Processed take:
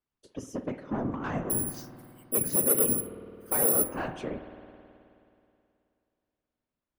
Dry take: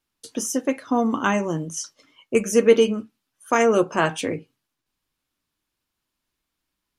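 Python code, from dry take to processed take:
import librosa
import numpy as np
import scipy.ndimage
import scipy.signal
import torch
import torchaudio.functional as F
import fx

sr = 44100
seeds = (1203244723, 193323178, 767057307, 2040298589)

y = 10.0 ** (-18.0 / 20.0) * np.tanh(x / 10.0 ** (-18.0 / 20.0))
y = fx.lowpass(y, sr, hz=1300.0, slope=6)
y = fx.resample_bad(y, sr, factor=4, down='none', up='zero_stuff', at=(1.5, 3.89))
y = fx.whisperise(y, sr, seeds[0])
y = fx.comb_fb(y, sr, f0_hz=250.0, decay_s=0.41, harmonics='odd', damping=0.0, mix_pct=50)
y = fx.rev_spring(y, sr, rt60_s=2.7, pass_ms=(53,), chirp_ms=30, drr_db=9.0)
y = F.gain(torch.from_numpy(y), -1.5).numpy()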